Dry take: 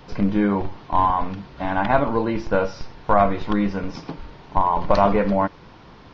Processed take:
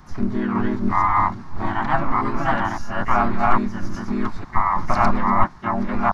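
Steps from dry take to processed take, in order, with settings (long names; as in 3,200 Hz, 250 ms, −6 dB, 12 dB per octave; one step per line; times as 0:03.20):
delay that plays each chunk backwards 556 ms, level 0 dB
phaser with its sweep stopped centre 1,100 Hz, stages 4
pitch-shifted copies added +3 semitones 0 dB, +12 semitones −12 dB
level −3 dB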